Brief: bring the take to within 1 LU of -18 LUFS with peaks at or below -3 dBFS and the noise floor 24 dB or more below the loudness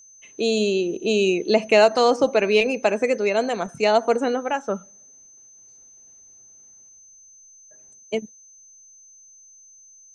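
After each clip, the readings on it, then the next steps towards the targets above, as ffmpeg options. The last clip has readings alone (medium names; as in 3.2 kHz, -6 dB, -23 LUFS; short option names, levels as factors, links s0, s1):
steady tone 6.2 kHz; tone level -47 dBFS; loudness -21.0 LUFS; peak level -3.5 dBFS; loudness target -18.0 LUFS
-> -af "bandreject=f=6200:w=30"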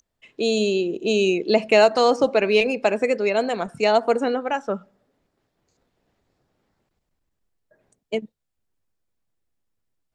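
steady tone not found; loudness -21.0 LUFS; peak level -3.5 dBFS; loudness target -18.0 LUFS
-> -af "volume=1.41,alimiter=limit=0.708:level=0:latency=1"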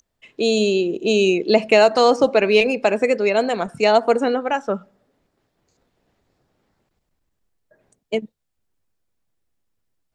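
loudness -18.0 LUFS; peak level -3.0 dBFS; noise floor -75 dBFS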